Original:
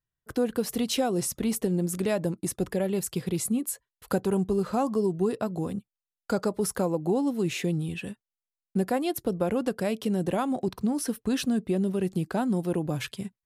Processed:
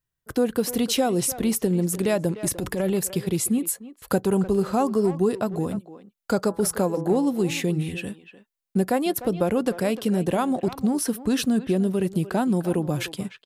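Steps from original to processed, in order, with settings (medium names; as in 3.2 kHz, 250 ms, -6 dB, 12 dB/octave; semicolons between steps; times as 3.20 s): treble shelf 11 kHz +4.5 dB; 2.44–2.94 s: transient shaper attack -9 dB, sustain +7 dB; 6.40–7.93 s: de-hum 166.5 Hz, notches 10; speakerphone echo 300 ms, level -13 dB; trim +4 dB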